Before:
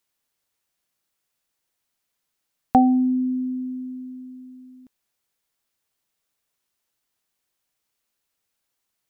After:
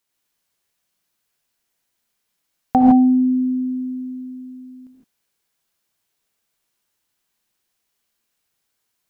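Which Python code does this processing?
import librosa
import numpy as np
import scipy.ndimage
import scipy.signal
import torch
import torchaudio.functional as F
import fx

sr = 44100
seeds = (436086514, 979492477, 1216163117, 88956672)

y = fx.rev_gated(x, sr, seeds[0], gate_ms=180, shape='rising', drr_db=-2.0)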